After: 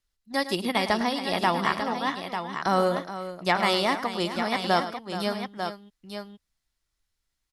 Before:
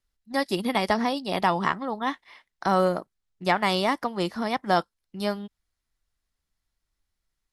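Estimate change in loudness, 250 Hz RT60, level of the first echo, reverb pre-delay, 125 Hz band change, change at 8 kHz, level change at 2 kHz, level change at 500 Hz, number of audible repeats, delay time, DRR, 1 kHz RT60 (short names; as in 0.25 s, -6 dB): -0.5 dB, none, -12.5 dB, none, -1.5 dB, +3.0 dB, +1.5 dB, -0.5 dB, 3, 0.105 s, none, none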